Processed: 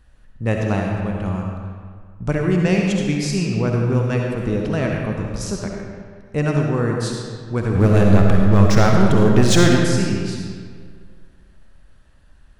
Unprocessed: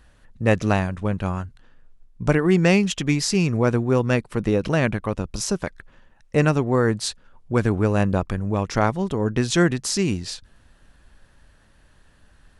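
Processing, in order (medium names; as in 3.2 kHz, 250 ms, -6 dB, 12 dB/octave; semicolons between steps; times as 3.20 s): bass shelf 180 Hz +6.5 dB; 7.75–9.81 s: waveshaping leveller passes 3; algorithmic reverb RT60 1.9 s, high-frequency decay 0.7×, pre-delay 25 ms, DRR 0 dB; trim -5 dB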